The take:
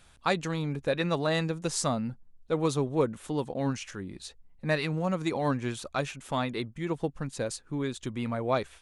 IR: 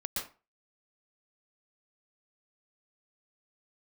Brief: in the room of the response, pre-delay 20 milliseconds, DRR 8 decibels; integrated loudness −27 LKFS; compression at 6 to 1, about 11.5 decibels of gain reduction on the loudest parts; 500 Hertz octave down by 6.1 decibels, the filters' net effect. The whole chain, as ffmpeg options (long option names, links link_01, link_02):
-filter_complex "[0:a]equalizer=frequency=500:width_type=o:gain=-7.5,acompressor=threshold=-37dB:ratio=6,asplit=2[link_01][link_02];[1:a]atrim=start_sample=2205,adelay=20[link_03];[link_02][link_03]afir=irnorm=-1:irlink=0,volume=-11dB[link_04];[link_01][link_04]amix=inputs=2:normalize=0,volume=14dB"